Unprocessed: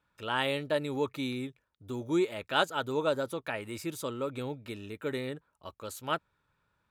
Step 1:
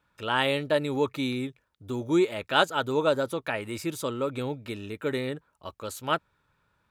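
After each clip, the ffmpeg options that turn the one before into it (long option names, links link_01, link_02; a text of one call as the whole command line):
ffmpeg -i in.wav -af "highshelf=frequency=11000:gain=-3.5,volume=5dB" out.wav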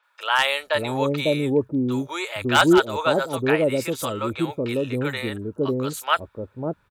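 ffmpeg -i in.wav -filter_complex "[0:a]acrossover=split=620|5800[link_01][link_02][link_03];[link_03]adelay=30[link_04];[link_01]adelay=550[link_05];[link_05][link_02][link_04]amix=inputs=3:normalize=0,aeval=exprs='0.188*(abs(mod(val(0)/0.188+3,4)-2)-1)':channel_layout=same,volume=7.5dB" out.wav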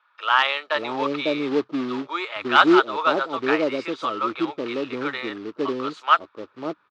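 ffmpeg -i in.wav -af "acrusher=bits=3:mode=log:mix=0:aa=0.000001,highpass=310,equalizer=frequency=310:width_type=q:width=4:gain=5,equalizer=frequency=540:width_type=q:width=4:gain=-4,equalizer=frequency=1200:width_type=q:width=4:gain=9,lowpass=frequency=4400:width=0.5412,lowpass=frequency=4400:width=1.3066,volume=-1dB" out.wav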